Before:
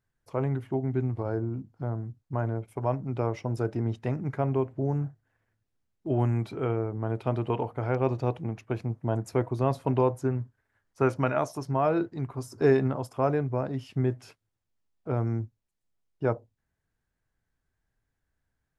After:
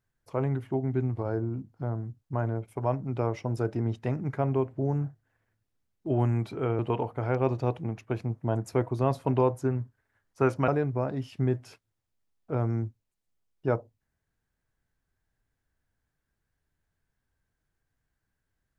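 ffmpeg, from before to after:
-filter_complex "[0:a]asplit=3[a][b][c];[a]atrim=end=6.792[d];[b]atrim=start=7.388:end=11.282[e];[c]atrim=start=13.248[f];[d][e]acrossfade=d=0.004:c1=hsin:c2=hsin[g];[g][f]acrossfade=d=0.004:c1=hsin:c2=hsin"

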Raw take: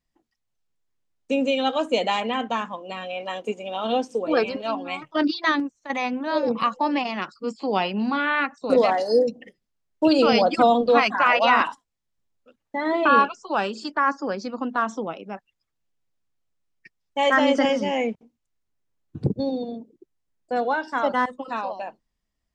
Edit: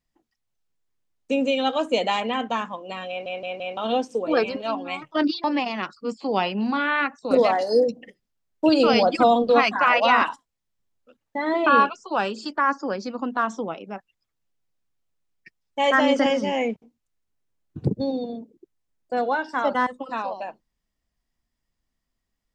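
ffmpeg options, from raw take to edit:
-filter_complex "[0:a]asplit=6[a][b][c][d][e][f];[a]atrim=end=3.262[g];[b]atrim=start=3.088:end=3.262[h];[c]atrim=start=3.088:end=3.262[i];[d]atrim=start=3.088:end=3.262[j];[e]atrim=start=3.768:end=5.442[k];[f]atrim=start=6.828[l];[g][h]acrossfade=d=0.004:c1=hsin:c2=hsin[m];[m][i]acrossfade=d=0.004:c1=hsin:c2=hsin[n];[n][j]acrossfade=d=0.004:c1=hsin:c2=hsin[o];[o][k]acrossfade=d=0.004:c1=hsin:c2=hsin[p];[p][l]acrossfade=d=0.004:c1=hsin:c2=hsin"

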